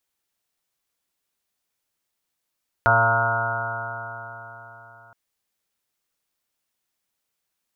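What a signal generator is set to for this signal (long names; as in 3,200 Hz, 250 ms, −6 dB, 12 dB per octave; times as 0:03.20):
stiff-string partials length 2.27 s, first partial 113 Hz, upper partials −13/−17.5/−12/−6.5/3.5/−7/2/−5/−6/0/6/−10.5 dB, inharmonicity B 0.0008, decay 3.93 s, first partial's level −23 dB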